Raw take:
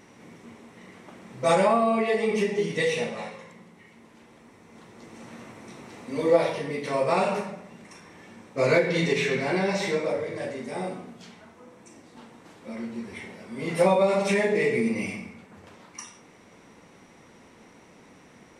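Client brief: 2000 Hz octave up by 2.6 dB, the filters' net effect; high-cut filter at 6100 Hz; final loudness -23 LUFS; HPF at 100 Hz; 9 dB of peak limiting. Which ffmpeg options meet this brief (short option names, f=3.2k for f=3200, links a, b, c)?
-af "highpass=100,lowpass=6.1k,equalizer=f=2k:t=o:g=3,volume=4.5dB,alimiter=limit=-12.5dB:level=0:latency=1"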